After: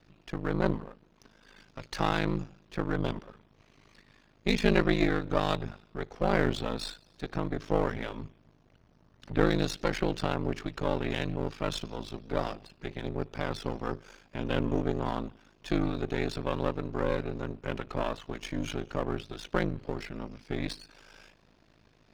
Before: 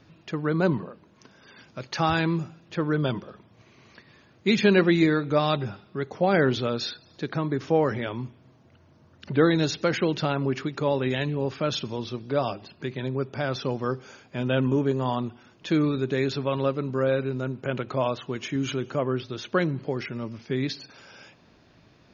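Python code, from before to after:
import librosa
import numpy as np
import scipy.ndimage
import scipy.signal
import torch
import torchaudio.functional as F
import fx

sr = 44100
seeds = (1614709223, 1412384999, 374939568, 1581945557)

y = np.where(x < 0.0, 10.0 ** (-12.0 / 20.0) * x, x)
y = y * np.sin(2.0 * np.pi * 26.0 * np.arange(len(y)) / sr)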